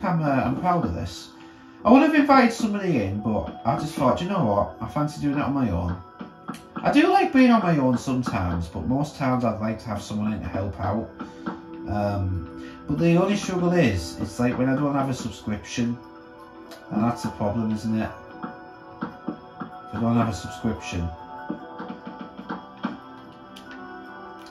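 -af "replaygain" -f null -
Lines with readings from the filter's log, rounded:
track_gain = +3.9 dB
track_peak = 0.619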